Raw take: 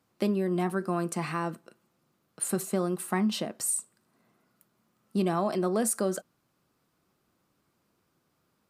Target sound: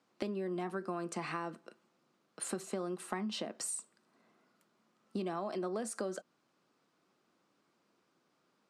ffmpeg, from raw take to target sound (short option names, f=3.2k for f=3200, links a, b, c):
-filter_complex "[0:a]acrossover=split=180 7900:gain=0.0891 1 0.0891[a][b][c];[a][b][c]amix=inputs=3:normalize=0,acompressor=threshold=-35dB:ratio=5"